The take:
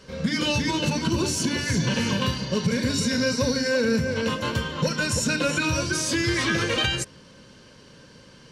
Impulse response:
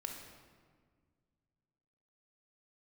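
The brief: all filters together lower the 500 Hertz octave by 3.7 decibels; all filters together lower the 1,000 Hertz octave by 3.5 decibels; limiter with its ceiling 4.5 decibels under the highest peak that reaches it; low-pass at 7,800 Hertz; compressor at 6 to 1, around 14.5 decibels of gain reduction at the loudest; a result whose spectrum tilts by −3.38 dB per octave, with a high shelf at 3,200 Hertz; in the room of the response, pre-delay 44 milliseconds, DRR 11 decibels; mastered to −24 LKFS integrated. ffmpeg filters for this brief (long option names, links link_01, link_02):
-filter_complex "[0:a]lowpass=7800,equalizer=frequency=500:width_type=o:gain=-3.5,equalizer=frequency=1000:width_type=o:gain=-4,highshelf=frequency=3200:gain=4.5,acompressor=threshold=-36dB:ratio=6,alimiter=level_in=5.5dB:limit=-24dB:level=0:latency=1,volume=-5.5dB,asplit=2[link_01][link_02];[1:a]atrim=start_sample=2205,adelay=44[link_03];[link_02][link_03]afir=irnorm=-1:irlink=0,volume=-10dB[link_04];[link_01][link_04]amix=inputs=2:normalize=0,volume=14.5dB"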